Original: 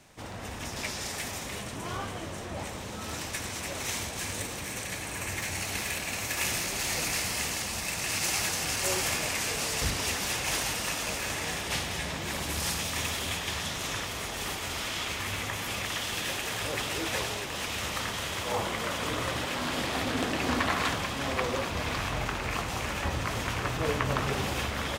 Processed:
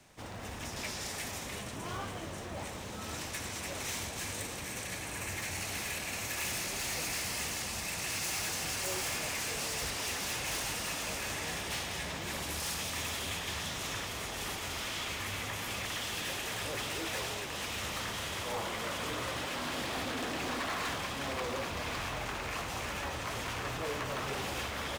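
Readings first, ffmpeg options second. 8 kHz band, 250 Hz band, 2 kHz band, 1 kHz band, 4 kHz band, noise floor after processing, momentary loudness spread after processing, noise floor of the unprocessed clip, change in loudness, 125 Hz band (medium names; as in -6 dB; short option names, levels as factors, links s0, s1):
-4.5 dB, -6.5 dB, -5.0 dB, -5.0 dB, -4.5 dB, -42 dBFS, 5 LU, -38 dBFS, -5.0 dB, -7.0 dB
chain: -filter_complex "[0:a]acrossover=split=330|460|2400[s0][s1][s2][s3];[s0]alimiter=level_in=2.51:limit=0.0631:level=0:latency=1:release=477,volume=0.398[s4];[s4][s1][s2][s3]amix=inputs=4:normalize=0,acrusher=bits=6:mode=log:mix=0:aa=0.000001,asoftclip=type=hard:threshold=0.0376,volume=0.668"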